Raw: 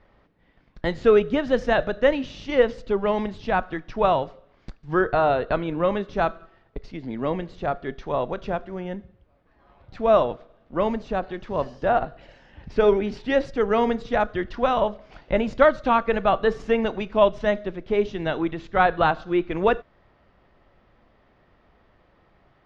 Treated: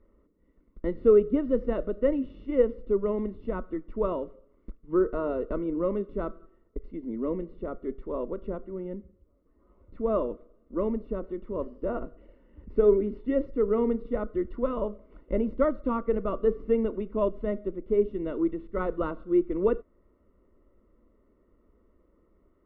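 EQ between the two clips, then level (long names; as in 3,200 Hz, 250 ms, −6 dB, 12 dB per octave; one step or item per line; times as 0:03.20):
Savitzky-Golay smoothing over 65 samples
high-frequency loss of the air 200 metres
phaser with its sweep stopped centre 320 Hz, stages 4
0.0 dB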